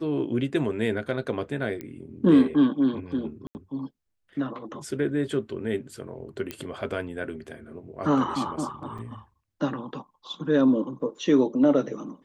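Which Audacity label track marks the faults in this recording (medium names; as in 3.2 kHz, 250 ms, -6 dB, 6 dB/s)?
1.810000	1.810000	pop -22 dBFS
3.470000	3.550000	dropout 79 ms
6.510000	6.510000	pop -16 dBFS
8.980000	8.990000	dropout 5.6 ms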